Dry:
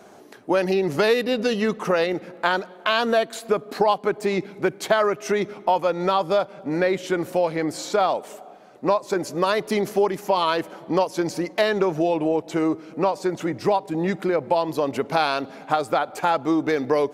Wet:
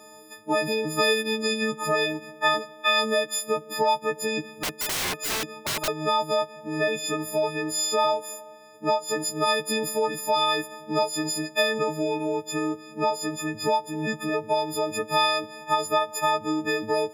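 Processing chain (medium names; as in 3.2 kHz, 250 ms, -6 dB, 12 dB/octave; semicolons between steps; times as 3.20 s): partials quantised in pitch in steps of 6 st; 4.59–5.88 s: integer overflow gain 17 dB; trim -5.5 dB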